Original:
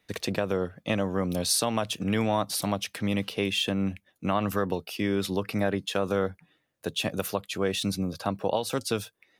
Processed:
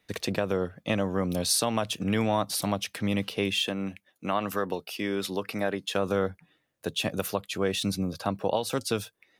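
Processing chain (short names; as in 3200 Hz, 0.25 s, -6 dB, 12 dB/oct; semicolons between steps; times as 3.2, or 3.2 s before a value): 3.64–5.9 HPF 300 Hz 6 dB/oct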